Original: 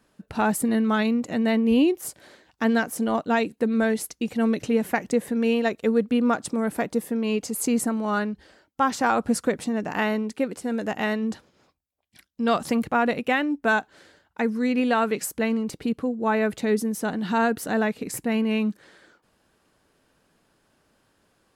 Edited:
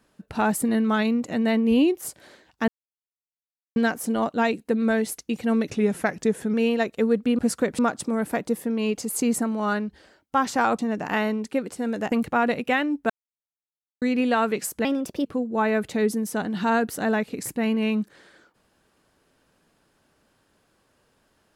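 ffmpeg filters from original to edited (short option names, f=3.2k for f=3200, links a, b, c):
-filter_complex "[0:a]asplit=12[a][b][c][d][e][f][g][h][i][j][k][l];[a]atrim=end=2.68,asetpts=PTS-STARTPTS,afade=t=out:st=2.676:d=0.004:c=hsin,apad=pad_dur=1.08[m];[b]atrim=start=2.68:end=4.624,asetpts=PTS-STARTPTS,afade=t=in:d=0.004:c=hsin[n];[c]atrim=start=4.62:end=5.39,asetpts=PTS-STARTPTS,asetrate=40572,aresample=44100[o];[d]atrim=start=5.386:end=6.242[p];[e]atrim=start=9.238:end=9.642[q];[f]atrim=start=6.238:end=9.242[r];[g]atrim=start=9.638:end=10.972[s];[h]atrim=start=12.708:end=13.69,asetpts=PTS-STARTPTS,afade=t=out:st=0.978:d=0.004:c=hsin[t];[i]atrim=start=13.69:end=14.61,asetpts=PTS-STARTPTS,volume=0[u];[j]atrim=start=14.61:end=15.444,asetpts=PTS-STARTPTS,afade=t=in:d=0.004:c=hsin[v];[k]atrim=start=15.44:end=15.94,asetpts=PTS-STARTPTS,asetrate=53802,aresample=44100[w];[l]atrim=start=15.936[x];[m][n]concat=n=2:v=0:a=1[y];[y][o]acrossfade=d=0.004:c1=hsin:c2=hsin[z];[z][p]acrossfade=d=0.004:c1=hsin:c2=hsin[aa];[aa][q]acrossfade=d=0.004:c1=hsin:c2=hsin[ab];[ab][r]acrossfade=d=0.004:c1=hsin:c2=hsin[ac];[ac][s]acrossfade=d=0.004:c1=hsin:c2=hsin[ad];[t][u][v]concat=n=3:v=0:a=1[ae];[ad][ae]acrossfade=d=0.004:c1=hsin:c2=hsin[af];[af][w]acrossfade=d=0.004:c1=hsin:c2=hsin[ag];[ag][x]acrossfade=d=0.004:c1=hsin:c2=hsin"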